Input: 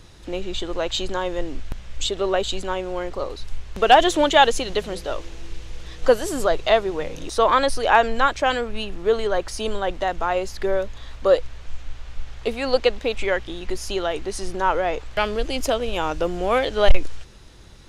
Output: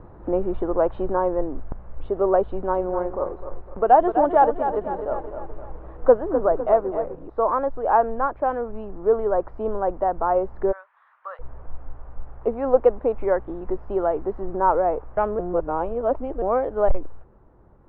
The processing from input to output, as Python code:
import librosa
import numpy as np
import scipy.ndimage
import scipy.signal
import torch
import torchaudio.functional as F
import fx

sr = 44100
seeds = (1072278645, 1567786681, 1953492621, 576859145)

y = fx.echo_crushed(x, sr, ms=253, feedback_pct=55, bits=6, wet_db=-8, at=(2.47, 7.15))
y = fx.highpass(y, sr, hz=1300.0, slope=24, at=(10.71, 11.39), fade=0.02)
y = fx.edit(y, sr, fx.reverse_span(start_s=15.39, length_s=1.03), tone=tone)
y = scipy.signal.sosfilt(scipy.signal.butter(4, 1100.0, 'lowpass', fs=sr, output='sos'), y)
y = fx.low_shelf(y, sr, hz=230.0, db=-7.0)
y = fx.rider(y, sr, range_db=10, speed_s=2.0)